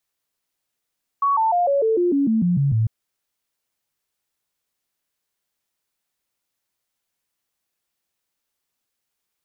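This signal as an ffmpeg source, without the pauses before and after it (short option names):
-f lavfi -i "aevalsrc='0.168*clip(min(mod(t,0.15),0.15-mod(t,0.15))/0.005,0,1)*sin(2*PI*1120*pow(2,-floor(t/0.15)/3)*mod(t,0.15))':d=1.65:s=44100"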